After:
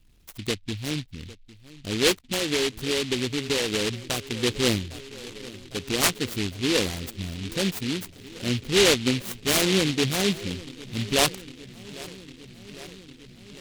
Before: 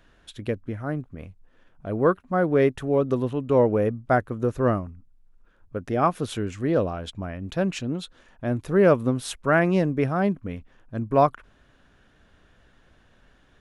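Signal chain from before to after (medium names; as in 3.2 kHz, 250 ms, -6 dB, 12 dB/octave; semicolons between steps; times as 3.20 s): resonances exaggerated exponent 2; low-pass 6.6 kHz; filtered feedback delay 804 ms, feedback 81%, low-pass 970 Hz, level -18.5 dB; 2.24–4.39 s: compression, threshold -21 dBFS, peak gain reduction 7 dB; peaking EQ 620 Hz -8.5 dB 0.33 oct; delay time shaken by noise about 3 kHz, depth 0.28 ms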